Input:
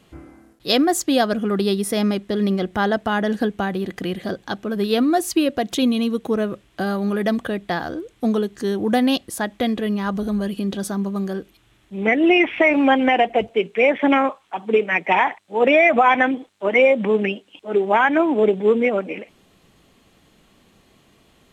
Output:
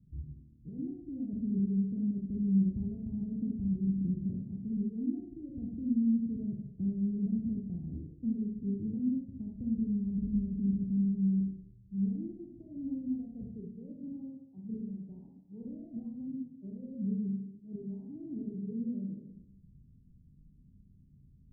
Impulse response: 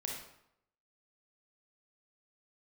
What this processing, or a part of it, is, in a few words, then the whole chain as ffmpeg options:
club heard from the street: -filter_complex "[0:a]alimiter=limit=0.188:level=0:latency=1:release=199,lowpass=f=170:w=0.5412,lowpass=f=170:w=1.3066[s0];[1:a]atrim=start_sample=2205[s1];[s0][s1]afir=irnorm=-1:irlink=0,volume=1.33"

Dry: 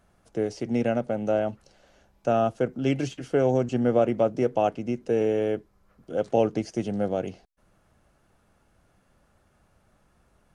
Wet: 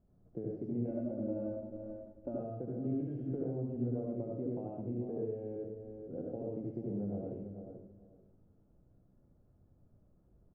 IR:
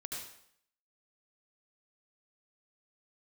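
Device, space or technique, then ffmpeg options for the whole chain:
television next door: -filter_complex "[0:a]asplit=2[s0][s1];[s1]adelay=438,lowpass=f=1700:p=1,volume=0.178,asplit=2[s2][s3];[s3]adelay=438,lowpass=f=1700:p=1,volume=0.21[s4];[s0][s2][s4]amix=inputs=3:normalize=0,acompressor=threshold=0.0316:ratio=6,lowpass=380[s5];[1:a]atrim=start_sample=2205[s6];[s5][s6]afir=irnorm=-1:irlink=0,asettb=1/sr,asplit=3[s7][s8][s9];[s7]atrim=end=0.884[s10];[s8]atrim=start=0.88:end=2.4,asetpts=PTS-STARTPTS,afade=t=in:d=0.004:c=qsin,afade=t=out:st=1.516:d=0.004:c=qsin,aecho=1:1:3.4:0.77,atrim=end_sample=67032[s11];[s9]atrim=start=2.396[s12];[s10][s11]acrossfade=d=0.004:c1=hsin:c2=qsin[s13];[s13][s12]acrossfade=d=0.004:c1=qsin:c2=hsin"

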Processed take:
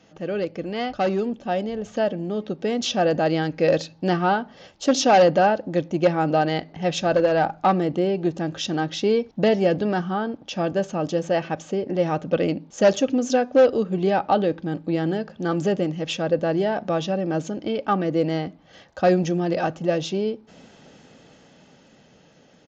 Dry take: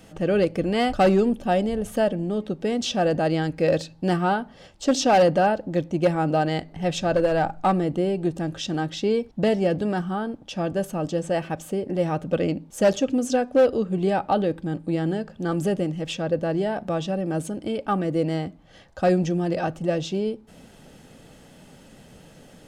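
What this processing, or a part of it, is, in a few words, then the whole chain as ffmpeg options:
Bluetooth headset: -af "highpass=f=180:p=1,dynaudnorm=f=370:g=11:m=2.82,aresample=16000,aresample=44100,volume=0.596" -ar 16000 -c:a sbc -b:a 64k

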